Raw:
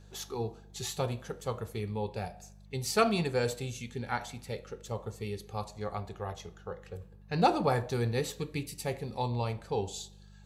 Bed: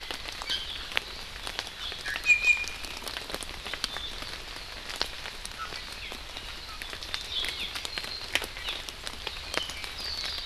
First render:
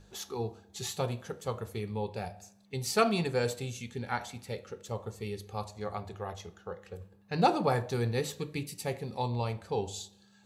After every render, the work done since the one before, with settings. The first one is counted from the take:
hum removal 50 Hz, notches 3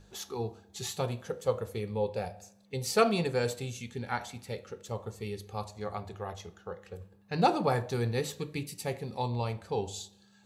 0:01.27–0:03.32: hollow resonant body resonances 510 Hz, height 10 dB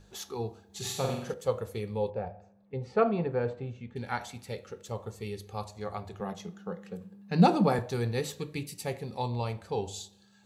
0:00.66–0:01.34: flutter between parallel walls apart 7.8 metres, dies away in 0.68 s
0:02.10–0:03.96: low-pass filter 1,400 Hz
0:06.20–0:07.79: high-pass with resonance 190 Hz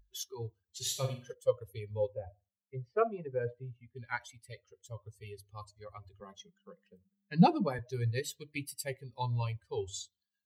spectral dynamics exaggerated over time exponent 2
speech leveller within 5 dB 0.5 s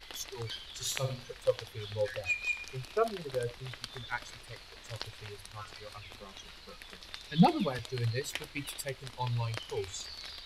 mix in bed −11 dB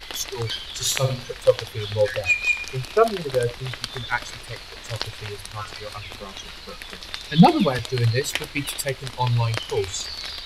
level +12 dB
brickwall limiter −3 dBFS, peak gain reduction 2.5 dB

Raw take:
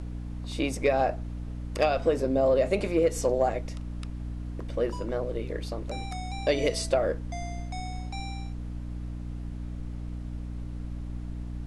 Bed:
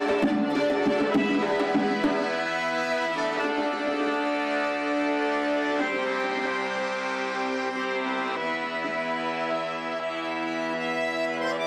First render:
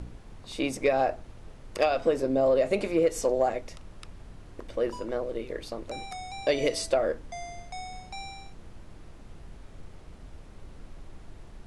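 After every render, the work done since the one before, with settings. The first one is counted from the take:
hum removal 60 Hz, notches 5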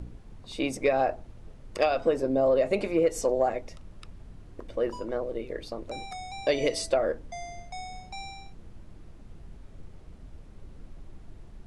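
broadband denoise 6 dB, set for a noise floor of −48 dBFS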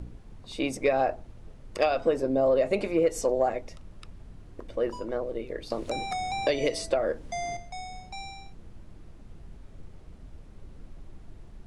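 0:05.70–0:07.57: multiband upward and downward compressor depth 70%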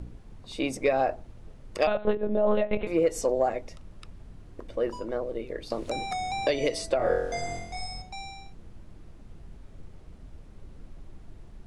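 0:01.87–0:02.87: one-pitch LPC vocoder at 8 kHz 210 Hz
0:06.97–0:08.02: flutter between parallel walls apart 4 metres, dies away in 0.88 s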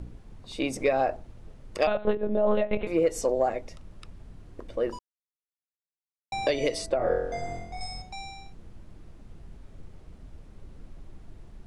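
0:00.62–0:01.17: upward compression, threshold −29 dBFS
0:04.99–0:06.32: silence
0:06.86–0:07.81: high-shelf EQ 2,400 Hz −11 dB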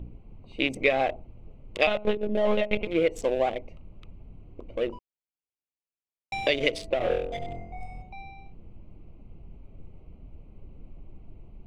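adaptive Wiener filter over 25 samples
flat-topped bell 2,700 Hz +11 dB 1.1 octaves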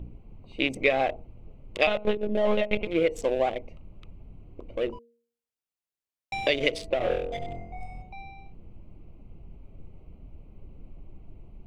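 hum removal 234.3 Hz, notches 2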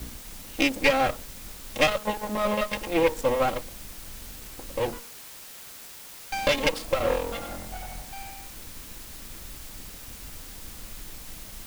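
lower of the sound and its delayed copy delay 3.7 ms
in parallel at −8 dB: bit-depth reduction 6 bits, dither triangular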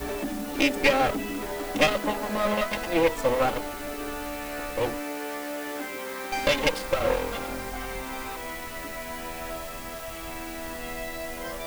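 mix in bed −8.5 dB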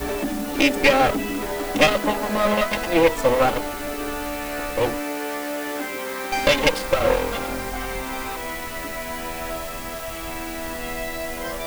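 level +5.5 dB
brickwall limiter −2 dBFS, peak gain reduction 1.5 dB

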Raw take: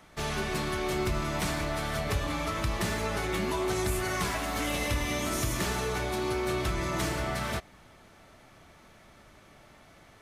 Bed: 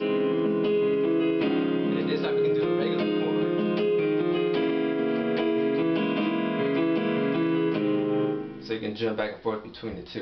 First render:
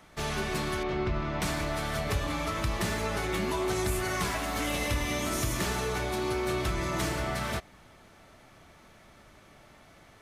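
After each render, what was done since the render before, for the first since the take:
0:00.83–0:01.42: high-frequency loss of the air 230 metres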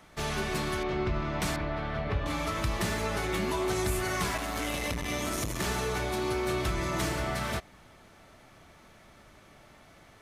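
0:01.56–0:02.26: high-frequency loss of the air 330 metres
0:04.37–0:05.64: saturating transformer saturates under 260 Hz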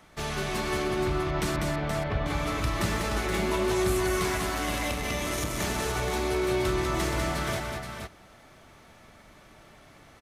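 multi-tap delay 197/475 ms −4/−6 dB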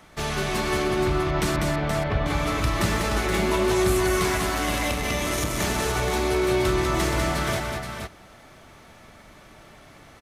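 level +4.5 dB

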